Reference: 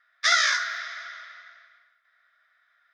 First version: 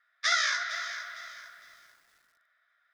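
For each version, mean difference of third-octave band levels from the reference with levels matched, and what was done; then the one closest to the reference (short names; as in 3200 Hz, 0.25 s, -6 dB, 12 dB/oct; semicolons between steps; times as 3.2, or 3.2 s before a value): 4.0 dB: on a send: tape echo 0.292 s, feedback 56%, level -9 dB, low-pass 1200 Hz; on the sum: lo-fi delay 0.456 s, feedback 35%, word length 8-bit, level -12 dB; gain -5.5 dB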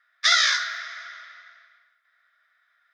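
1.5 dB: HPF 590 Hz 6 dB/oct; dynamic EQ 3800 Hz, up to +6 dB, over -37 dBFS, Q 1.6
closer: second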